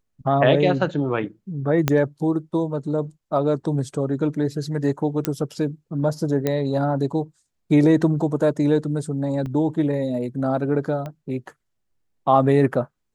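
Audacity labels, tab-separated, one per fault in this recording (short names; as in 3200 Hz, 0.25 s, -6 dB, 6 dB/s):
1.880000	1.880000	pop -4 dBFS
5.250000	5.250000	pop -6 dBFS
6.470000	6.470000	pop -9 dBFS
9.460000	9.460000	gap 2.8 ms
11.060000	11.060000	pop -20 dBFS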